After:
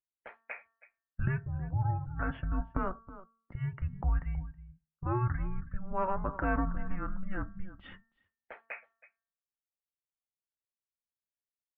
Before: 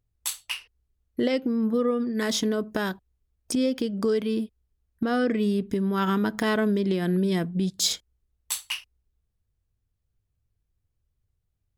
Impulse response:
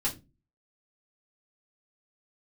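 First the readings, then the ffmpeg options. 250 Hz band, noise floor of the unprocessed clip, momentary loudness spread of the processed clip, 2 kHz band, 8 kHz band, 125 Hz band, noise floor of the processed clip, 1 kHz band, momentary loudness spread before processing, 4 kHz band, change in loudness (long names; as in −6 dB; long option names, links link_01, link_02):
−15.5 dB, −78 dBFS, 20 LU, −8.0 dB, below −40 dB, −0.5 dB, below −85 dBFS, −3.5 dB, 9 LU, below −30 dB, −9.5 dB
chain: -filter_complex "[0:a]aecho=1:1:322:0.168,asplit=2[link_01][link_02];[1:a]atrim=start_sample=2205[link_03];[link_02][link_03]afir=irnorm=-1:irlink=0,volume=-15dB[link_04];[link_01][link_04]amix=inputs=2:normalize=0,highpass=frequency=330:width_type=q:width=0.5412,highpass=frequency=330:width_type=q:width=1.307,lowpass=frequency=2300:width_type=q:width=0.5176,lowpass=frequency=2300:width_type=q:width=0.7071,lowpass=frequency=2300:width_type=q:width=1.932,afreqshift=-380,afftdn=noise_reduction=15:noise_floor=-49,bandreject=frequency=226.6:width_type=h:width=4,bandreject=frequency=453.2:width_type=h:width=4,bandreject=frequency=679.8:width_type=h:width=4,bandreject=frequency=906.4:width_type=h:width=4,bandreject=frequency=1133:width_type=h:width=4,bandreject=frequency=1359.6:width_type=h:width=4,bandreject=frequency=1586.2:width_type=h:width=4,bandreject=frequency=1812.8:width_type=h:width=4,volume=-4dB"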